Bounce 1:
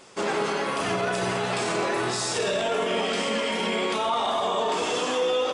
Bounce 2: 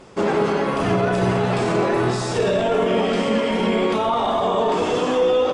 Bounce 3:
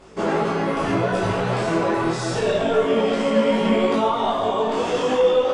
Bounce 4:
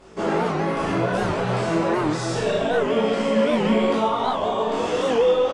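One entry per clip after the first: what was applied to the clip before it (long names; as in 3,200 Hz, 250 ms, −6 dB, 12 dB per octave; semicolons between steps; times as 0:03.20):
spectral tilt −3 dB per octave; level +4 dB
flutter between parallel walls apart 3.1 metres, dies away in 0.21 s; micro pitch shift up and down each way 27 cents; level +1 dB
double-tracking delay 42 ms −6 dB; wow of a warped record 78 rpm, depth 160 cents; level −2 dB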